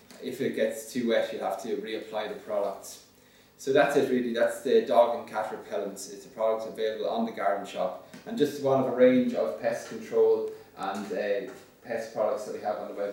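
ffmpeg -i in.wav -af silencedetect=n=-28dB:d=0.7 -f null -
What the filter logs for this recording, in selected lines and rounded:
silence_start: 2.72
silence_end: 3.67 | silence_duration: 0.95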